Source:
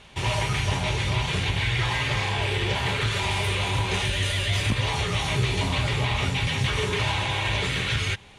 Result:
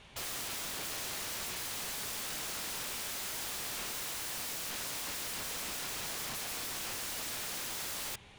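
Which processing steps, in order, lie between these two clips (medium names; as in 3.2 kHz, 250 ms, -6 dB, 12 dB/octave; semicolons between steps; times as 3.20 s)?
integer overflow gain 28 dB; trim -6.5 dB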